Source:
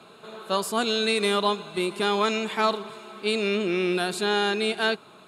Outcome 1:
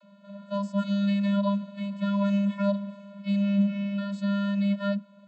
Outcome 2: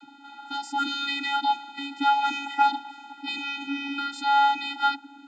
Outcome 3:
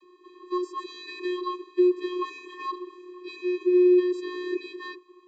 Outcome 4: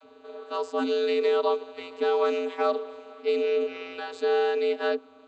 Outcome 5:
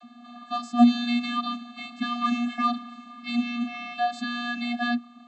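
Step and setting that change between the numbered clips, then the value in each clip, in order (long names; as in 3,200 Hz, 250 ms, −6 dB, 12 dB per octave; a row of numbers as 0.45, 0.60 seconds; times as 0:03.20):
channel vocoder, frequency: 200, 280, 360, 88, 240 Hertz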